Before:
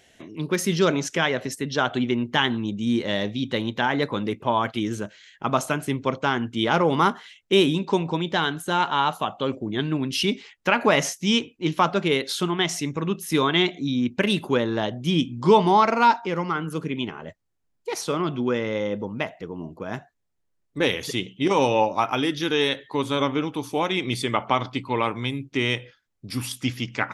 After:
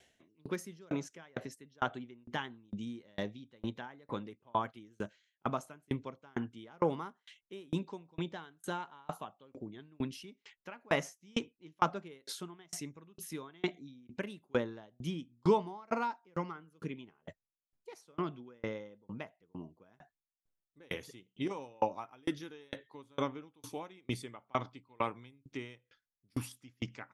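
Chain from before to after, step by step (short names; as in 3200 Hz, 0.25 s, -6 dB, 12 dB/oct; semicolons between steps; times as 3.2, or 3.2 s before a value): dynamic EQ 3500 Hz, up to -6 dB, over -38 dBFS, Q 1.1; dB-ramp tremolo decaying 2.2 Hz, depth 36 dB; gain -6 dB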